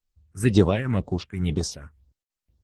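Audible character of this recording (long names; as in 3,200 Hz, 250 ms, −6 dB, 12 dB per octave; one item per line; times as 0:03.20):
tremolo triangle 2.1 Hz, depth 80%
phaser sweep stages 4, 2 Hz, lowest notch 640–2,400 Hz
Opus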